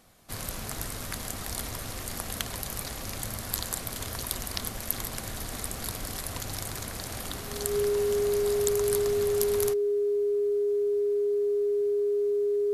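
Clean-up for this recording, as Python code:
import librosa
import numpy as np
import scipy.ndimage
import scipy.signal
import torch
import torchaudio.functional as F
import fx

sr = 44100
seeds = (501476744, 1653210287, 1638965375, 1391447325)

y = fx.fix_declip(x, sr, threshold_db=-8.5)
y = fx.notch(y, sr, hz=410.0, q=30.0)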